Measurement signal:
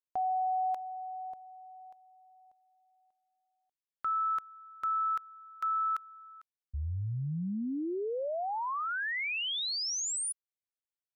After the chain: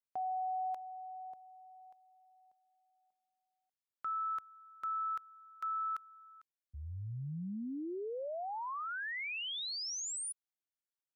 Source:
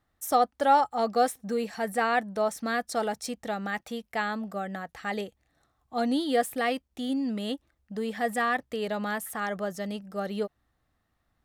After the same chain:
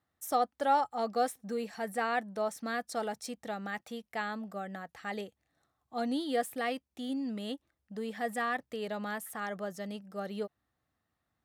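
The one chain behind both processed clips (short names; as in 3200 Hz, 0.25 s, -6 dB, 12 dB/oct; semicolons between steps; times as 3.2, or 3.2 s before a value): HPF 84 Hz; gain -6 dB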